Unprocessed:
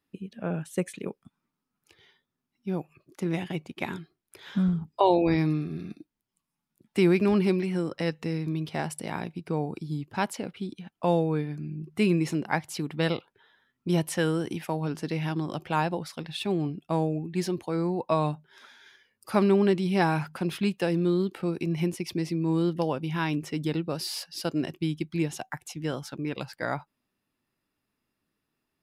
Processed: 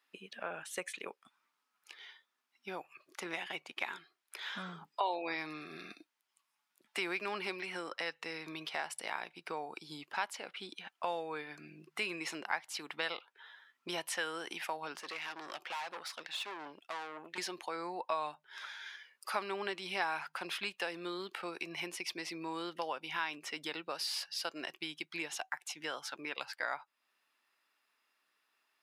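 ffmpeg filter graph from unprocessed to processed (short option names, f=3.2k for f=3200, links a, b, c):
-filter_complex "[0:a]asettb=1/sr,asplit=3[a][b][c];[a]atrim=end=14.974[d];[b]atrim=start=14.97:end=17.38,asetpts=PTS-STARTPTS,afade=t=in:d=0.004:c=qsin,afade=t=out:st=2.406:d=0.004:c=qsin,highpass=220,aeval=exprs='(tanh(56.2*val(0)+0.65)-tanh(0.65))/56.2':c=same[e];[c]atrim=start=17.376[f];[d][e]acrossfade=d=0.004:c1=hsin:c2=qsin[g];[g][f]acrossfade=d=0.004:c1=qsin:c2=hsin,highpass=1k,highshelf=f=7k:g=-10.5,acompressor=threshold=-51dB:ratio=2,volume=9dB"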